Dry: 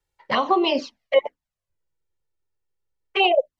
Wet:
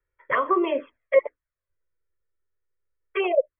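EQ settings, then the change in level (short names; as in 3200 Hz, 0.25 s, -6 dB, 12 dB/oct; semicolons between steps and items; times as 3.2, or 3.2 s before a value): brick-wall FIR low-pass 3400 Hz; high shelf 2500 Hz +11.5 dB; fixed phaser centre 800 Hz, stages 6; 0.0 dB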